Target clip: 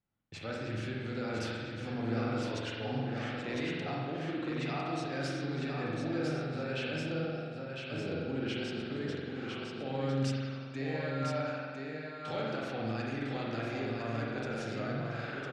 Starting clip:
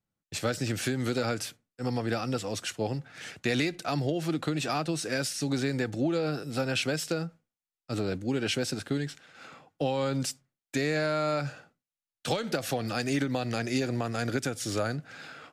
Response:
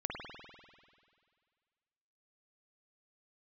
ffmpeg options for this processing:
-filter_complex "[0:a]lowpass=3900,areverse,acompressor=threshold=-36dB:ratio=6,areverse,aecho=1:1:1004:0.596[link_01];[1:a]atrim=start_sample=2205,asetrate=48510,aresample=44100[link_02];[link_01][link_02]afir=irnorm=-1:irlink=0,volume=1dB"

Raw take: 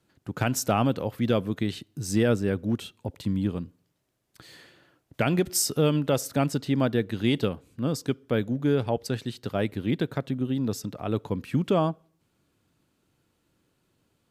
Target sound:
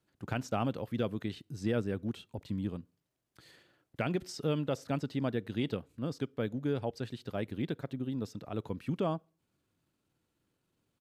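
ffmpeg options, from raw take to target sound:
ffmpeg -i in.wav -filter_complex "[0:a]acrossover=split=5100[link_01][link_02];[link_02]acompressor=threshold=-52dB:ratio=4:attack=1:release=60[link_03];[link_01][link_03]amix=inputs=2:normalize=0,atempo=1.3,volume=-8.5dB" out.wav

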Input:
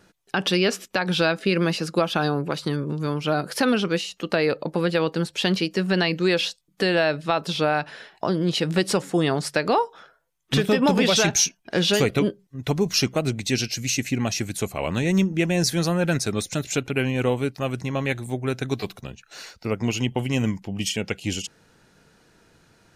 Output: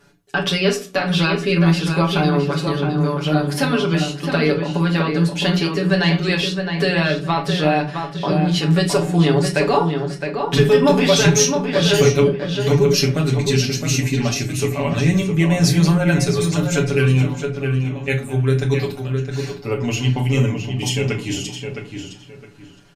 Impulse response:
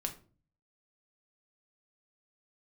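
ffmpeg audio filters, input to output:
-filter_complex "[0:a]aecho=1:1:7:0.93,asettb=1/sr,asplit=3[link_01][link_02][link_03];[link_01]atrim=end=17.224[link_04];[link_02]atrim=start=17.22:end=18.08,asetpts=PTS-STARTPTS,afade=type=in:duration=0.004:curve=qsin,afade=type=out:start_time=0.856:duration=0.004:curve=qsin,acompressor=threshold=-30dB:ratio=6[link_05];[link_03]atrim=start=18.076[link_06];[link_04][link_05]acrossfade=duration=0.004:curve1=hsin:curve2=qsin[link_07];[link_07][link_06]acrossfade=duration=0.004:curve1=qsin:curve2=hsin,asplit=2[link_08][link_09];[link_09]adelay=663,lowpass=frequency=3400:poles=1,volume=-6dB,asplit=2[link_10][link_11];[link_11]adelay=663,lowpass=frequency=3400:poles=1,volume=0.26,asplit=2[link_12][link_13];[link_13]adelay=663,lowpass=frequency=3400:poles=1,volume=0.26[link_14];[link_08][link_10][link_12][link_14]amix=inputs=4:normalize=0[link_15];[1:a]atrim=start_sample=2205[link_16];[link_15][link_16]afir=irnorm=-1:irlink=0" -ar 48000 -c:a libopus -b:a 96k

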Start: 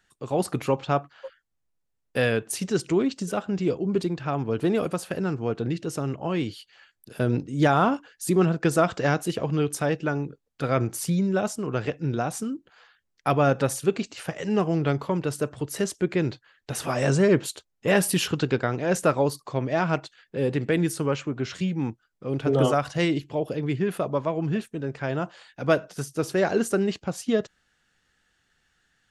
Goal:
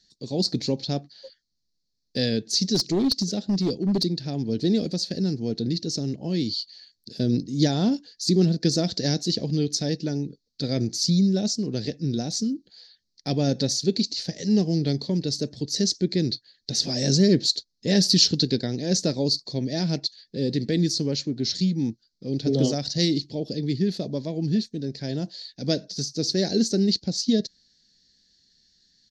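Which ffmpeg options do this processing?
ffmpeg -i in.wav -filter_complex "[0:a]firequalizer=gain_entry='entry(130,0);entry(210,7);entry(350,0);entry(770,-11);entry(1200,-26);entry(1800,-8);entry(2800,-12);entry(4300,15);entry(6100,3);entry(9400,-28)':delay=0.05:min_phase=1,crystalizer=i=2.5:c=0,asplit=3[link_01][link_02][link_03];[link_01]afade=type=out:start_time=2.74:duration=0.02[link_04];[link_02]aeval=exprs='clip(val(0),-1,0.133)':channel_layout=same,afade=type=in:start_time=2.74:duration=0.02,afade=type=out:start_time=4.02:duration=0.02[link_05];[link_03]afade=type=in:start_time=4.02:duration=0.02[link_06];[link_04][link_05][link_06]amix=inputs=3:normalize=0,volume=-1dB" out.wav

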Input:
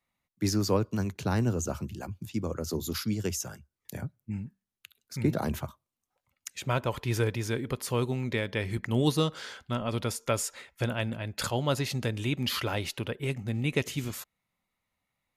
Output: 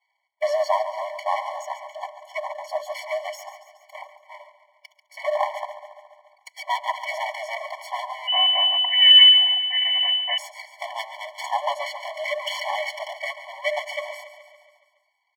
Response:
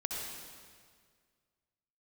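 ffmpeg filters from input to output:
-filter_complex "[0:a]highpass=frequency=110:width=0.5412,highpass=frequency=110:width=1.3066,bandreject=frequency=60:width_type=h:width=6,bandreject=frequency=120:width_type=h:width=6,bandreject=frequency=180:width_type=h:width=6,bandreject=frequency=240:width_type=h:width=6,bandreject=frequency=300:width_type=h:width=6,aecho=1:1:4:0.84,aeval=exprs='(tanh(6.31*val(0)+0.45)-tanh(0.45))/6.31':channel_layout=same,asplit=3[link_01][link_02][link_03];[link_01]bandpass=frequency=300:width_type=q:width=8,volume=0dB[link_04];[link_02]bandpass=frequency=870:width_type=q:width=8,volume=-6dB[link_05];[link_03]bandpass=frequency=2240:width_type=q:width=8,volume=-9dB[link_06];[link_04][link_05][link_06]amix=inputs=3:normalize=0,aeval=exprs='max(val(0),0)':channel_layout=same,aecho=1:1:140|280|420|560|700|840|980:0.224|0.134|0.0806|0.0484|0.029|0.0174|0.0104,asettb=1/sr,asplit=3[link_07][link_08][link_09];[link_07]atrim=end=8.274[link_10];[link_08]atrim=start=8.27:end=10.38,asetpts=PTS-STARTPTS,afade=type=in:duration=0.004:curve=qsin,afade=type=out:start_time=2.106:duration=0.004:curve=qsin,lowpass=frequency=2600:width_type=q:width=0.5098,lowpass=frequency=2600:width_type=q:width=0.6013,lowpass=frequency=2600:width_type=q:width=0.9,lowpass=frequency=2600:width_type=q:width=2.563,afreqshift=-3000[link_11];[link_09]atrim=start=10.376[link_12];[link_10][link_11]acrossfade=duration=0.004:curve1=hsin:curve2=qsin[link_13];[link_13][link_12]acrossfade=duration=0.004:curve1=qsin:curve2=hsin,alimiter=level_in=29dB:limit=-1dB:release=50:level=0:latency=1,afftfilt=real='re*eq(mod(floor(b*sr/1024/580),2),1)':imag='im*eq(mod(floor(b*sr/1024/580),2),1)':win_size=1024:overlap=0.75"

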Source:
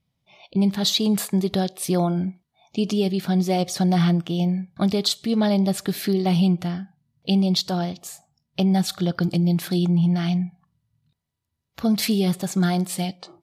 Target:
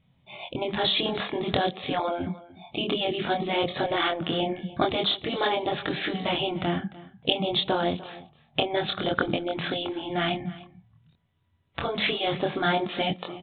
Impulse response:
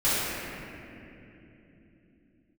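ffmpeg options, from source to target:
-filter_complex "[0:a]flanger=delay=22.5:depth=3.8:speed=0.52,asplit=2[link_01][link_02];[link_02]acompressor=threshold=-39dB:ratio=6,volume=-2dB[link_03];[link_01][link_03]amix=inputs=2:normalize=0,afftfilt=real='re*lt(hypot(re,im),0.282)':imag='im*lt(hypot(re,im),0.282)':win_size=1024:overlap=0.75,asplit=2[link_04][link_05];[link_05]aecho=0:1:298:0.112[link_06];[link_04][link_06]amix=inputs=2:normalize=0,aresample=8000,aresample=44100,volume=8dB"

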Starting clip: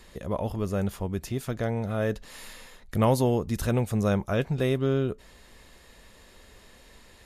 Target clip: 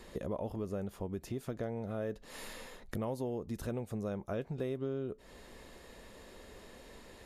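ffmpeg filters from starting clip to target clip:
ffmpeg -i in.wav -af "acompressor=threshold=-37dB:ratio=6,equalizer=frequency=400:width_type=o:width=2.6:gain=8,volume=-3.5dB" out.wav

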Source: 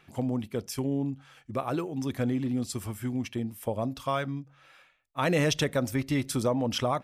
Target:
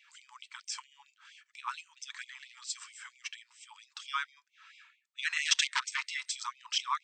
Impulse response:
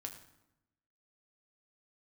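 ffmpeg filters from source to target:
-filter_complex "[0:a]asplit=3[link_01][link_02][link_03];[link_01]afade=type=out:start_time=5.45:duration=0.02[link_04];[link_02]aeval=exprs='0.188*(cos(1*acos(clip(val(0)/0.188,-1,1)))-cos(1*PI/2))+0.075*(cos(4*acos(clip(val(0)/0.188,-1,1)))-cos(4*PI/2))+0.0335*(cos(5*acos(clip(val(0)/0.188,-1,1)))-cos(5*PI/2))+0.0841*(cos(6*acos(clip(val(0)/0.188,-1,1)))-cos(6*PI/2))+0.0211*(cos(7*acos(clip(val(0)/0.188,-1,1)))-cos(7*PI/2))':channel_layout=same,afade=type=in:start_time=5.45:duration=0.02,afade=type=out:start_time=6.1:duration=0.02[link_05];[link_03]afade=type=in:start_time=6.1:duration=0.02[link_06];[link_04][link_05][link_06]amix=inputs=3:normalize=0,afftfilt=real='re*between(b*sr/4096,570,8500)':imag='im*between(b*sr/4096,570,8500)':win_size=4096:overlap=0.75,afftfilt=real='re*gte(b*sr/1024,850*pow(2100/850,0.5+0.5*sin(2*PI*4.4*pts/sr)))':imag='im*gte(b*sr/1024,850*pow(2100/850,0.5+0.5*sin(2*PI*4.4*pts/sr)))':win_size=1024:overlap=0.75,volume=1.5dB"

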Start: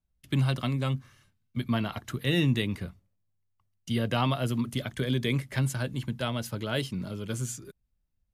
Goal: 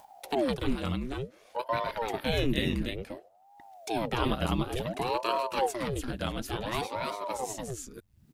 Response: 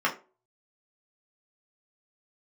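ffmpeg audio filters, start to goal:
-af "aecho=1:1:290:0.668,acompressor=mode=upward:threshold=-30dB:ratio=2.5,aeval=exprs='val(0)*sin(2*PI*430*n/s+430*0.9/0.56*sin(2*PI*0.56*n/s))':channel_layout=same"

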